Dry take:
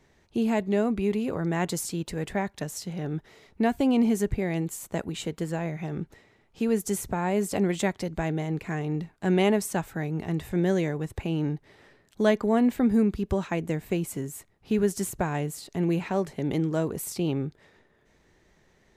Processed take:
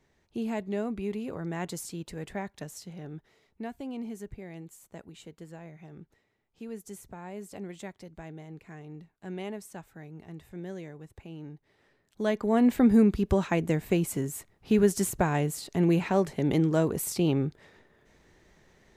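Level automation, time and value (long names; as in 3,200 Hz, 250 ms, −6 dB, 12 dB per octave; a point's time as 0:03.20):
0:02.65 −7 dB
0:03.82 −15 dB
0:11.52 −15 dB
0:12.28 −6 dB
0:12.74 +2 dB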